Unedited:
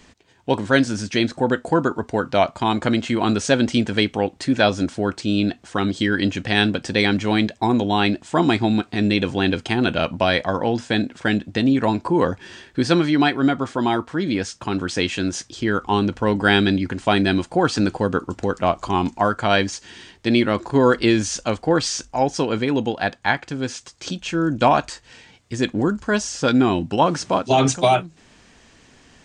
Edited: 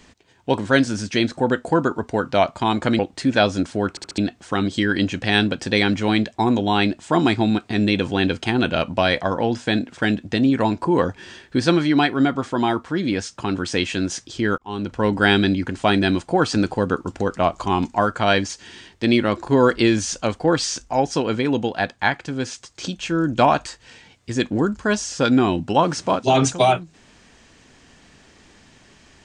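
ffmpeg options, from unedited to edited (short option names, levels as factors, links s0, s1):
-filter_complex "[0:a]asplit=7[s0][s1][s2][s3][s4][s5][s6];[s0]atrim=end=2.992[s7];[s1]atrim=start=4.218:end=5.202[s8];[s2]atrim=start=5.128:end=5.202[s9];[s3]atrim=start=5.128:end=5.202[s10];[s4]atrim=start=5.128:end=5.202[s11];[s5]atrim=start=5.408:end=15.81,asetpts=PTS-STARTPTS,afade=t=out:st=10.398:d=0.004:c=hsin[s12];[s6]atrim=start=15.81,asetpts=PTS-STARTPTS,afade=t=in:d=0.47[s13];[s7][s8]acrossfade=d=0.004:c1=hsin:c2=hsin[s14];[s14][s9]acrossfade=d=0.004:c1=hsin:c2=hsin[s15];[s15][s10]acrossfade=d=0.004:c1=hsin:c2=hsin[s16];[s16][s11]acrossfade=d=0.004:c1=hsin:c2=hsin[s17];[s12][s13]concat=n=2:v=0:a=1[s18];[s17][s18]acrossfade=d=0.004:c1=hsin:c2=hsin"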